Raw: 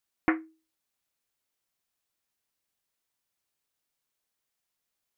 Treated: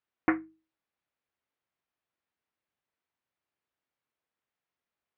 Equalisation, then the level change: high-pass 53 Hz; low-pass 2.4 kHz 12 dB/octave; hum notches 50/100/150/200 Hz; 0.0 dB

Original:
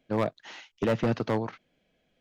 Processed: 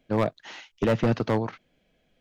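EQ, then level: bass shelf 68 Hz +7.5 dB; +2.5 dB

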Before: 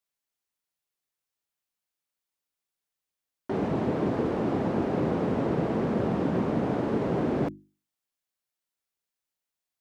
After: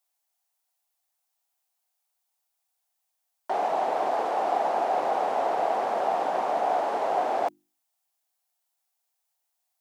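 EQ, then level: resonant high-pass 740 Hz, resonance Q 4.9; treble shelf 4.5 kHz +10.5 dB; 0.0 dB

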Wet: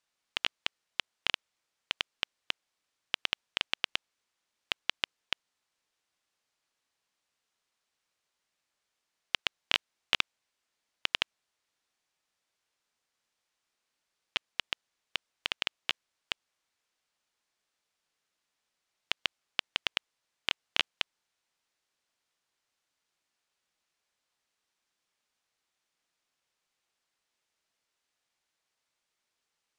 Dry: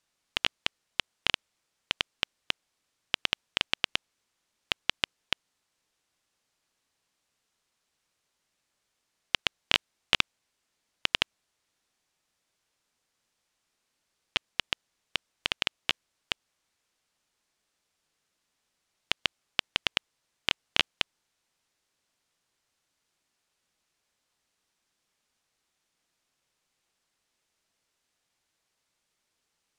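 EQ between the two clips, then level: bass shelf 370 Hz -7.5 dB; treble shelf 7.6 kHz -6 dB; -2.5 dB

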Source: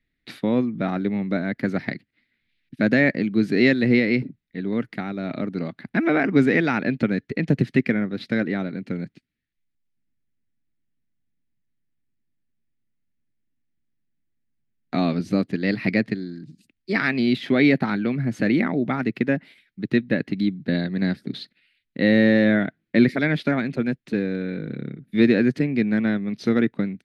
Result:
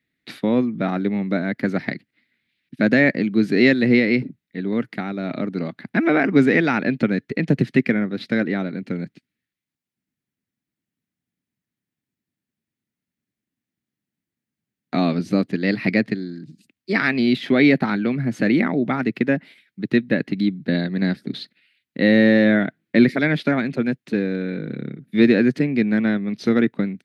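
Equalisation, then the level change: high-pass 120 Hz; +2.5 dB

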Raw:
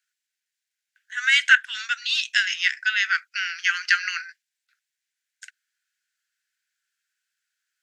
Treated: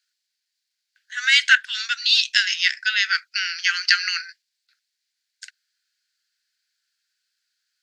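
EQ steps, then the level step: high-pass 940 Hz 12 dB/octave; peaking EQ 4.5 kHz +12.5 dB 0.64 oct; 0.0 dB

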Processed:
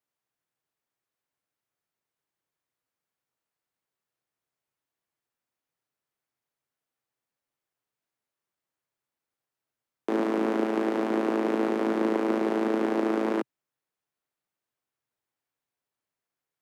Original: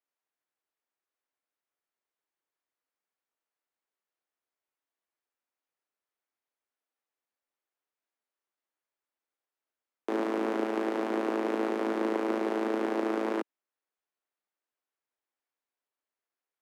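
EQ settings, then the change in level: peaking EQ 130 Hz +14.5 dB 1.1 oct; +2.0 dB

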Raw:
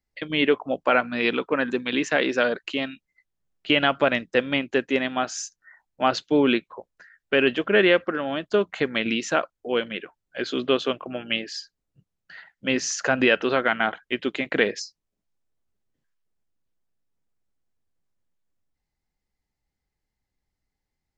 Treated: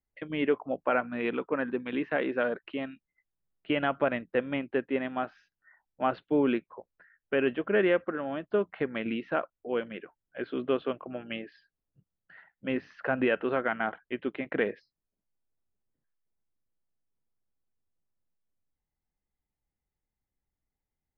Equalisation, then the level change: Gaussian low-pass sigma 3.6 samples; -5.5 dB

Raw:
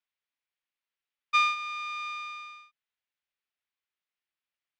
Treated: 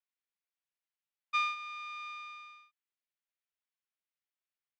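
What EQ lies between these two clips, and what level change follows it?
high-pass 420 Hz 6 dB/octave; treble shelf 7.2 kHz -7.5 dB; -6.5 dB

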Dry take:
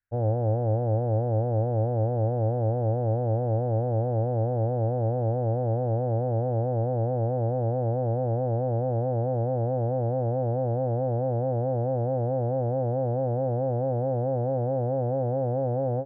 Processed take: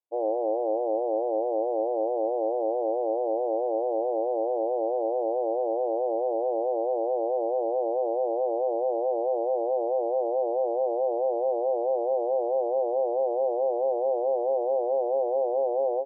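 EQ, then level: brick-wall FIR band-pass 300–1100 Hz; +3.0 dB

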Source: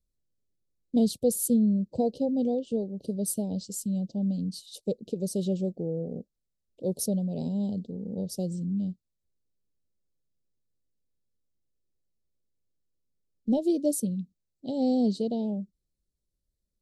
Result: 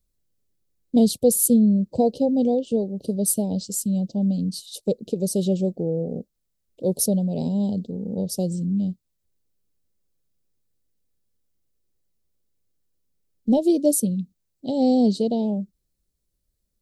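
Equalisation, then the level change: treble shelf 9.5 kHz +6.5 dB; dynamic bell 1.2 kHz, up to +4 dB, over -46 dBFS, Q 0.88; +6.0 dB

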